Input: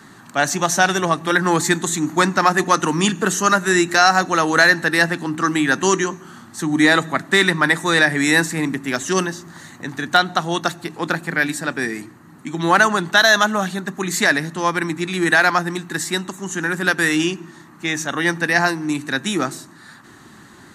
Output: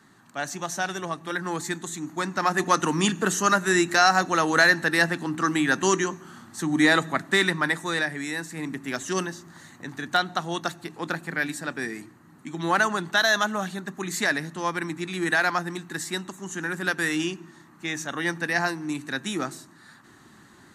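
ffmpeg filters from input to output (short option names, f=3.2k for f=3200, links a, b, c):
-af "volume=3.5dB,afade=t=in:st=2.24:d=0.48:silence=0.421697,afade=t=out:st=7.16:d=1.22:silence=0.266073,afade=t=in:st=8.38:d=0.46:silence=0.375837"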